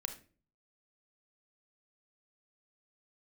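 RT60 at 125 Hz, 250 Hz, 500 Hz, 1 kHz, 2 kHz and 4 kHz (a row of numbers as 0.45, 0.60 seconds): 0.70, 0.55, 0.45, 0.30, 0.35, 0.30 seconds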